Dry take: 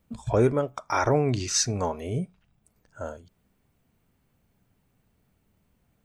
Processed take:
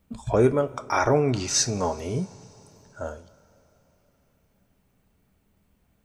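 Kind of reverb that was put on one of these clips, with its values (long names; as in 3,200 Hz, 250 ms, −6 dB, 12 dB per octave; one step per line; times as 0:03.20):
coupled-rooms reverb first 0.24 s, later 3.8 s, from −20 dB, DRR 10 dB
level +1.5 dB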